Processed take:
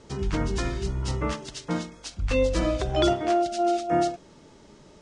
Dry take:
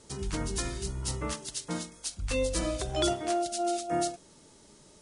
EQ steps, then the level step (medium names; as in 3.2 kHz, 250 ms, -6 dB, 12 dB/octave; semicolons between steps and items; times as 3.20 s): distance through air 140 m; peaking EQ 4.1 kHz -2.5 dB 0.56 oct; +7.0 dB